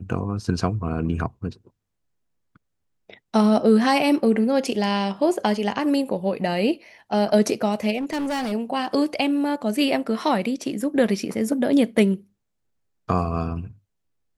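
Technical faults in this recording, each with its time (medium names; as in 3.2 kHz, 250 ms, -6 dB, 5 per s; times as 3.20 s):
7.97–8.53 s: clipped -23 dBFS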